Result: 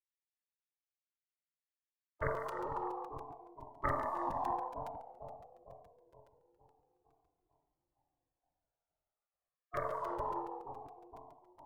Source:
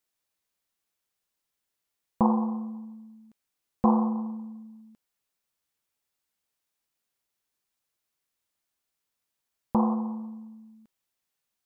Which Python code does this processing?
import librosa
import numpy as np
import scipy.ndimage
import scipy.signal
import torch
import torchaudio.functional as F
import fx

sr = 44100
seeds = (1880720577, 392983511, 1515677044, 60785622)

p1 = fx.cheby_harmonics(x, sr, harmonics=(2,), levels_db=(-18,), full_scale_db=-9.5)
p2 = p1 + fx.echo_split(p1, sr, split_hz=730.0, low_ms=458, high_ms=154, feedback_pct=52, wet_db=-13.0, dry=0)
p3 = fx.env_lowpass(p2, sr, base_hz=490.0, full_db=-22.5)
p4 = fx.noise_reduce_blind(p3, sr, reduce_db=7)
p5 = fx.over_compress(p4, sr, threshold_db=-33.0, ratio=-0.5)
p6 = p4 + (p5 * librosa.db_to_amplitude(-1.0))
p7 = fx.spec_gate(p6, sr, threshold_db=-25, keep='weak')
p8 = fx.vibrato(p7, sr, rate_hz=0.45, depth_cents=43.0)
p9 = fx.buffer_crackle(p8, sr, first_s=0.38, period_s=0.14, block=256, kind='repeat')
p10 = fx.comb_cascade(p9, sr, direction='falling', hz=0.26)
y = p10 * librosa.db_to_amplitude(13.0)